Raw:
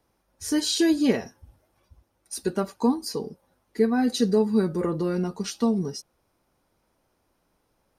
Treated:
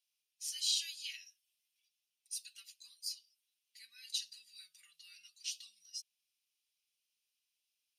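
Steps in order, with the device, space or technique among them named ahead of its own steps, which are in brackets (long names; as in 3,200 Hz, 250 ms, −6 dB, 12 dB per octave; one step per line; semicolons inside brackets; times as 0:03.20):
elliptic high-pass filter 2,700 Hz, stop band 70 dB
behind a face mask (high-shelf EQ 3,200 Hz −8 dB)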